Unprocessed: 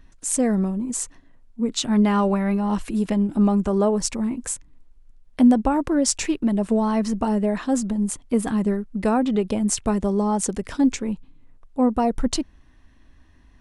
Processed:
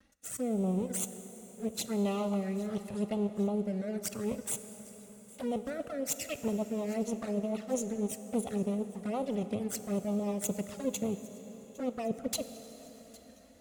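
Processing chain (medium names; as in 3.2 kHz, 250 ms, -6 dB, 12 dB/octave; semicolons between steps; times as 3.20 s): comb filter that takes the minimum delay 1.5 ms; high-pass 120 Hz 12 dB/octave; treble shelf 7.2 kHz +8 dB; reverse; compression 8:1, threshold -29 dBFS, peak gain reduction 15 dB; reverse; transient shaper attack +1 dB, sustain -8 dB; rotary cabinet horn 0.85 Hz, later 6.3 Hz, at 5.37 s; touch-sensitive flanger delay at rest 3.9 ms, full sweep at -30 dBFS; on a send: feedback echo behind a high-pass 807 ms, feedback 63%, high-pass 2 kHz, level -21.5 dB; on the sum: vibrato 2.3 Hz 72 cents; plate-style reverb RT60 5 s, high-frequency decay 0.75×, DRR 10 dB; trim +1.5 dB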